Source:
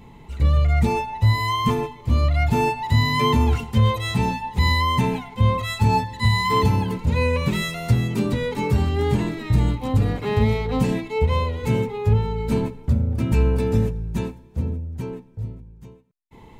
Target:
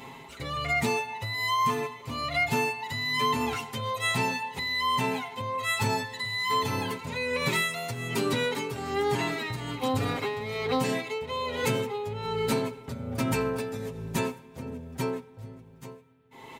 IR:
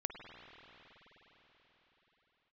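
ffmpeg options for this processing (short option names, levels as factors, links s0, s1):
-filter_complex "[0:a]highpass=f=790:p=1,aecho=1:1:7.5:0.66,acompressor=threshold=0.0224:ratio=5,tremolo=f=1.2:d=0.63,asplit=2[s0][s1];[1:a]atrim=start_sample=2205[s2];[s1][s2]afir=irnorm=-1:irlink=0,volume=0.15[s3];[s0][s3]amix=inputs=2:normalize=0,volume=2.66"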